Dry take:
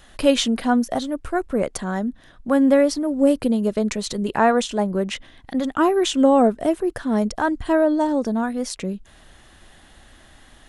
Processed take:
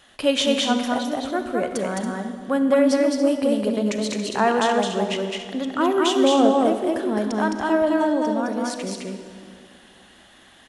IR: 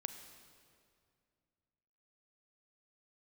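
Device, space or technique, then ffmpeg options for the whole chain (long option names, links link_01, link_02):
stadium PA: -filter_complex "[0:a]highpass=frequency=240:poles=1,equalizer=frequency=3000:width_type=o:width=0.48:gain=4,highshelf=frequency=9900:gain=-4,aecho=1:1:212.8|279.9:0.794|0.282[link_01];[1:a]atrim=start_sample=2205[link_02];[link_01][link_02]afir=irnorm=-1:irlink=0"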